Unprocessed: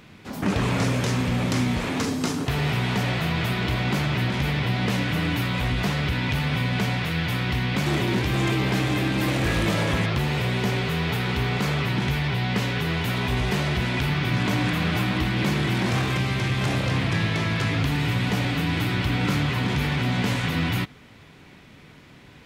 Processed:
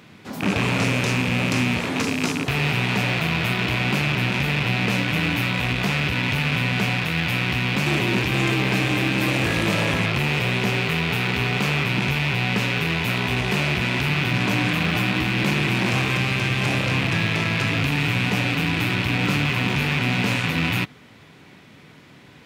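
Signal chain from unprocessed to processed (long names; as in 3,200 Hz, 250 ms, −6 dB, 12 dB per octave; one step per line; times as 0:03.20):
loose part that buzzes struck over −28 dBFS, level −15 dBFS
high-pass filter 100 Hz
level +1.5 dB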